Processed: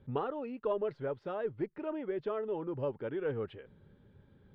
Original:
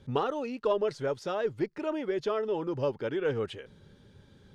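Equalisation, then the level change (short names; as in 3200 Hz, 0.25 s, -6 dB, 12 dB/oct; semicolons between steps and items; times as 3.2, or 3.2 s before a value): air absorption 470 m; -4.0 dB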